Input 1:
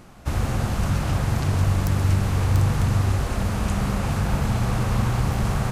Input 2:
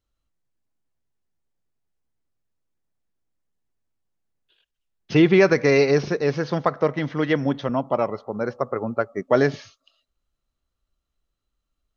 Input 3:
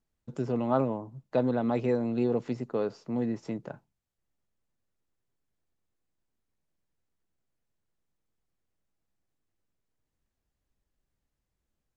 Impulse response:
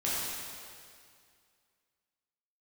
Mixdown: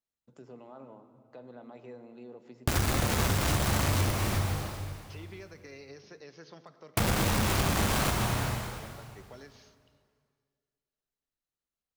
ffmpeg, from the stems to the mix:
-filter_complex "[0:a]highpass=frequency=60:poles=1,acrusher=bits=3:mix=0:aa=0.000001,adelay=2400,volume=0dB,asplit=3[link_01][link_02][link_03];[link_01]atrim=end=4.11,asetpts=PTS-STARTPTS,afade=type=out:start_time=4.106:duration=0.004:curve=hsin[link_04];[link_02]atrim=start=4.11:end=6.97,asetpts=PTS-STARTPTS,volume=0[link_05];[link_03]atrim=start=6.97,asetpts=PTS-STARTPTS,afade=type=in:duration=0.004:curve=hsin[link_06];[link_04][link_05][link_06]concat=n=3:v=0:a=1,asplit=2[link_07][link_08];[link_08]volume=-6dB[link_09];[1:a]highshelf=frequency=3700:gain=9,acrossover=split=250|3200[link_10][link_11][link_12];[link_10]acompressor=threshold=-29dB:ratio=4[link_13];[link_11]acompressor=threshold=-28dB:ratio=4[link_14];[link_12]acompressor=threshold=-40dB:ratio=4[link_15];[link_13][link_14][link_15]amix=inputs=3:normalize=0,volume=-18dB,asplit=2[link_16][link_17];[link_17]volume=-23dB[link_18];[2:a]acompressor=threshold=-39dB:ratio=1.5,volume=-11dB,asplit=2[link_19][link_20];[link_20]volume=-19dB[link_21];[link_16][link_19]amix=inputs=2:normalize=0,highpass=frequency=400:poles=1,alimiter=level_in=15dB:limit=-24dB:level=0:latency=1:release=128,volume=-15dB,volume=0dB[link_22];[3:a]atrim=start_sample=2205[link_23];[link_09][link_18][link_21]amix=inputs=3:normalize=0[link_24];[link_24][link_23]afir=irnorm=-1:irlink=0[link_25];[link_07][link_22][link_25]amix=inputs=3:normalize=0,acompressor=threshold=-23dB:ratio=12"

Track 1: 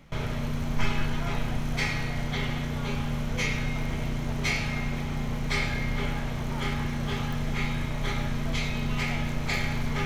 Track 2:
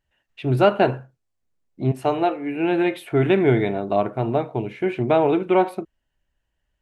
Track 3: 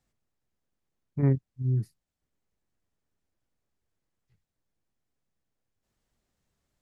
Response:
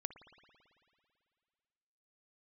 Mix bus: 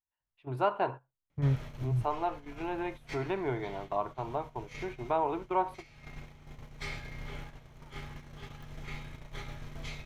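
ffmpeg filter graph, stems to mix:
-filter_complex "[0:a]adelay=1300,volume=-12dB,asplit=2[link_01][link_02];[link_02]volume=-21.5dB[link_03];[1:a]equalizer=frequency=1000:width=2.2:gain=15,volume=-16.5dB,asplit=2[link_04][link_05];[2:a]lowpass=1700,equalizer=frequency=360:width=0.58:gain=-11,adelay=200,volume=1dB[link_06];[link_05]apad=whole_len=500955[link_07];[link_01][link_07]sidechaincompress=threshold=-41dB:ratio=6:attack=32:release=338[link_08];[3:a]atrim=start_sample=2205[link_09];[link_03][link_09]afir=irnorm=-1:irlink=0[link_10];[link_08][link_04][link_06][link_10]amix=inputs=4:normalize=0,agate=range=-12dB:threshold=-39dB:ratio=16:detection=peak,equalizer=frequency=220:width_type=o:width=0.3:gain=-10"

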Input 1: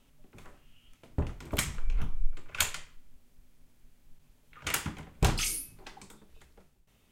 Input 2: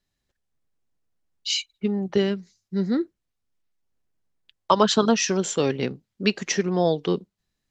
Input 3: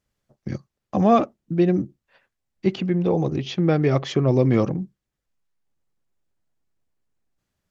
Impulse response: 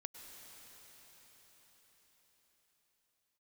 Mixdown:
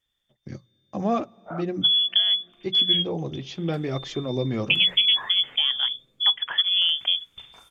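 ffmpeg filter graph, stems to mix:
-filter_complex "[0:a]acompressor=threshold=-38dB:ratio=5,aeval=exprs='sgn(val(0))*max(abs(val(0))-0.00188,0)':channel_layout=same,adelay=2150,volume=-4.5dB,asplit=2[link_01][link_02];[link_02]volume=-9.5dB[link_03];[1:a]lowpass=frequency=2500:width=0.5412,lowpass=frequency=2500:width=1.3066,equalizer=frequency=210:width=4.3:gain=9.5,volume=0.5dB[link_04];[2:a]highshelf=frequency=4900:gain=7,bandreject=frequency=60:width_type=h:width=6,bandreject=frequency=120:width_type=h:width=6,bandreject=frequency=180:width_type=h:width=6,flanger=delay=2.4:depth=6:regen=-63:speed=0.74:shape=sinusoidal,volume=-4.5dB,asplit=2[link_05][link_06];[link_06]volume=-18dB[link_07];[link_01][link_04]amix=inputs=2:normalize=0,lowpass=frequency=3100:width_type=q:width=0.5098,lowpass=frequency=3100:width_type=q:width=0.6013,lowpass=frequency=3100:width_type=q:width=0.9,lowpass=frequency=3100:width_type=q:width=2.563,afreqshift=-3600,acompressor=threshold=-18dB:ratio=3,volume=0dB[link_08];[3:a]atrim=start_sample=2205[link_09];[link_03][link_07]amix=inputs=2:normalize=0[link_10];[link_10][link_09]afir=irnorm=-1:irlink=0[link_11];[link_05][link_08][link_11]amix=inputs=3:normalize=0"

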